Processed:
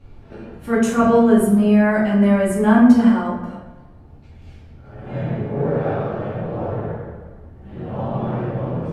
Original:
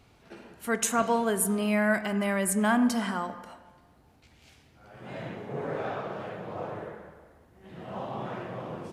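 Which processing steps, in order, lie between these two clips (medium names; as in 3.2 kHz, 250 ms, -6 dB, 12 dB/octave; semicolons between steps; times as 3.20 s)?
tilt EQ -3 dB/octave; simulated room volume 130 m³, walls mixed, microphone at 2.3 m; trim -2.5 dB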